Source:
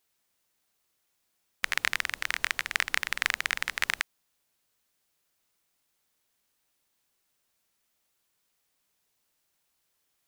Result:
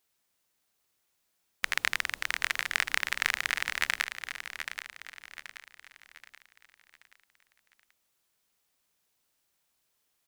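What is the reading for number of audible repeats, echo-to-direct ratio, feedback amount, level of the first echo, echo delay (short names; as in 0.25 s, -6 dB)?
4, -7.5 dB, 42%, -8.5 dB, 0.779 s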